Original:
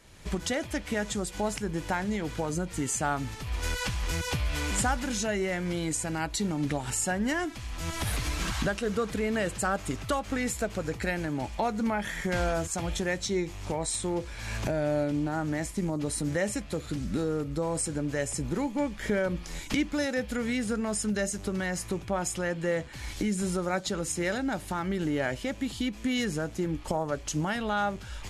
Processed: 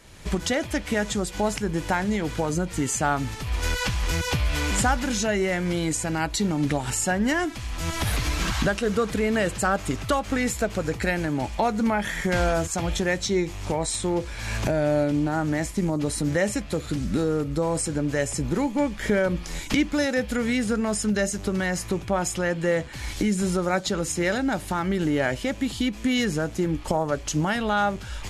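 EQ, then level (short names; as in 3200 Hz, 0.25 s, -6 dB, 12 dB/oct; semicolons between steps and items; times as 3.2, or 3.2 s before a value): dynamic EQ 9200 Hz, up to -4 dB, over -46 dBFS, Q 1.7; +5.5 dB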